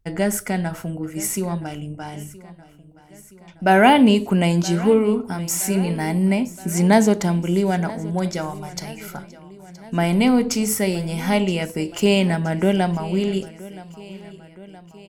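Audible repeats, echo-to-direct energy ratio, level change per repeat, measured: 3, −17.5 dB, −4.5 dB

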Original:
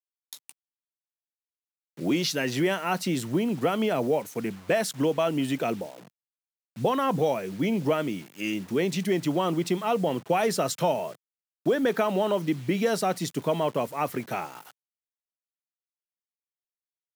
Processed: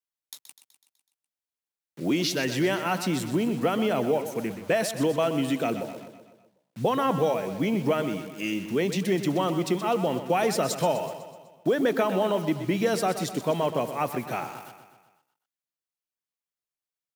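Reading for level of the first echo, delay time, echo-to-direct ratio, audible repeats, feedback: −11.0 dB, 125 ms, −9.5 dB, 5, 56%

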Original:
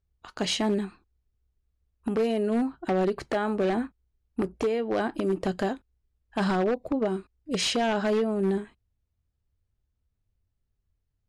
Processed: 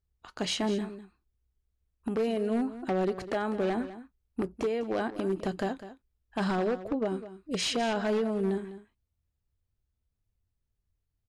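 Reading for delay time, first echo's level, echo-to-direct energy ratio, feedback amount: 202 ms, −14.0 dB, −14.0 dB, repeats not evenly spaced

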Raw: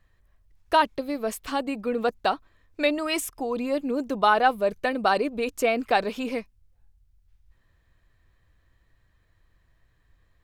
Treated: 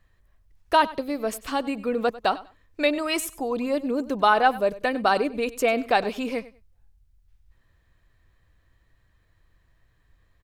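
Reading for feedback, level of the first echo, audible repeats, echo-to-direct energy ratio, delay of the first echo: 19%, −18.0 dB, 2, −18.0 dB, 97 ms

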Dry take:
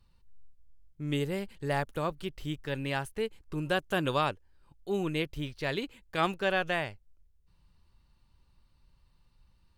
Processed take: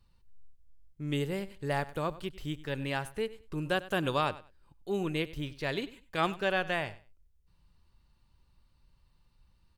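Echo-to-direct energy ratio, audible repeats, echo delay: −17.5 dB, 2, 97 ms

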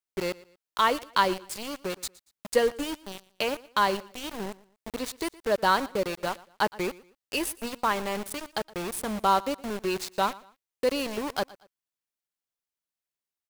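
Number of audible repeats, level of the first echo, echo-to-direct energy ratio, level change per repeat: 2, −21.0 dB, −20.5 dB, −10.0 dB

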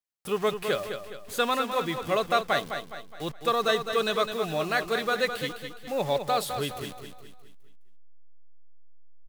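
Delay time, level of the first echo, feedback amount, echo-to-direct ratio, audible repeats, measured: 208 ms, −8.0 dB, 43%, −7.0 dB, 4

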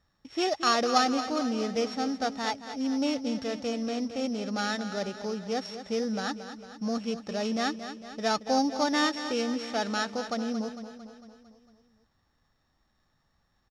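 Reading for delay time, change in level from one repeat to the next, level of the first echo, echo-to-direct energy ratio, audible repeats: 226 ms, −5.0 dB, −11.0 dB, −9.5 dB, 5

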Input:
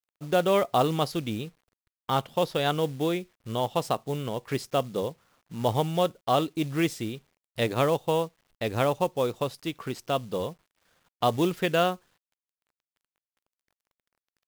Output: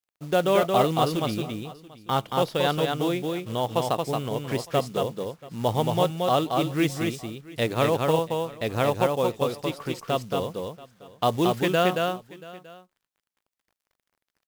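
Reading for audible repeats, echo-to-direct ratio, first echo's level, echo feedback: 3, −3.5 dB, −3.5 dB, repeats not evenly spaced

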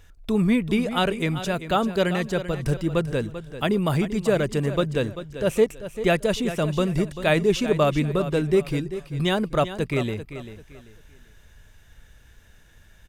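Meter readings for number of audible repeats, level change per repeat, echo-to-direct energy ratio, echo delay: 3, −11.0 dB, −11.5 dB, 391 ms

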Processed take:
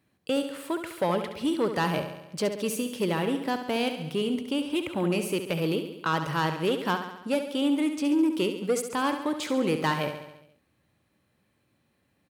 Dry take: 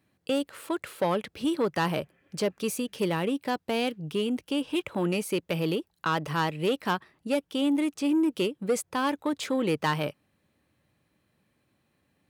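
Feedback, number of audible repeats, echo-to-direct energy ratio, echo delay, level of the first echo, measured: 60%, 6, −7.0 dB, 69 ms, −9.0 dB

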